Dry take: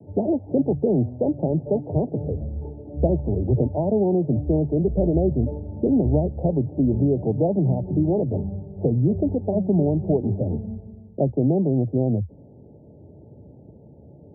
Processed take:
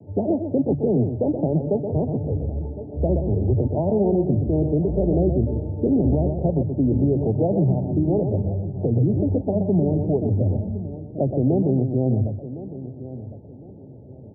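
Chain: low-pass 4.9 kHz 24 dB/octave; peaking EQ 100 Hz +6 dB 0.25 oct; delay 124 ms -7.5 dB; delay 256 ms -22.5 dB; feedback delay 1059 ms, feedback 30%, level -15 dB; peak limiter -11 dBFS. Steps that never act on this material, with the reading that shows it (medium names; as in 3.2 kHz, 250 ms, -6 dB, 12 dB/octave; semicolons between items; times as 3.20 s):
low-pass 4.9 kHz: input has nothing above 850 Hz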